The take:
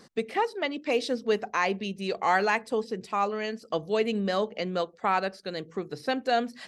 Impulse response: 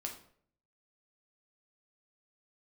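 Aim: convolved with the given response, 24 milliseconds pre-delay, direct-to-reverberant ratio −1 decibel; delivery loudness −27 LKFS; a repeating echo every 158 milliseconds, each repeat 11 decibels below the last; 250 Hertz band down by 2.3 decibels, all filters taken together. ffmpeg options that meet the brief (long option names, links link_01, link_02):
-filter_complex "[0:a]equalizer=frequency=250:width_type=o:gain=-3,aecho=1:1:158|316|474:0.282|0.0789|0.0221,asplit=2[link_01][link_02];[1:a]atrim=start_sample=2205,adelay=24[link_03];[link_02][link_03]afir=irnorm=-1:irlink=0,volume=2dB[link_04];[link_01][link_04]amix=inputs=2:normalize=0,volume=-1.5dB"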